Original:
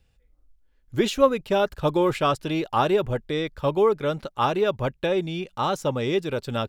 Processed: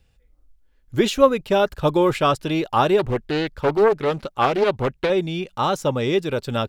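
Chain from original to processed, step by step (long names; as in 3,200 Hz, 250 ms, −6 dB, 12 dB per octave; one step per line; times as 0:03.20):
0:02.99–0:05.10: highs frequency-modulated by the lows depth 0.48 ms
level +3.5 dB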